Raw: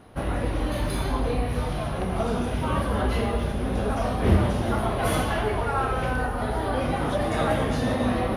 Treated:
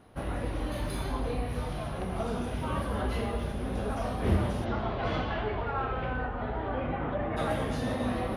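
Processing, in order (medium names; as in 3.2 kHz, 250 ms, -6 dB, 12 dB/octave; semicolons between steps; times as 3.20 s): 4.64–7.36 s: low-pass 5.3 kHz -> 2.4 kHz 24 dB/octave; trim -6.5 dB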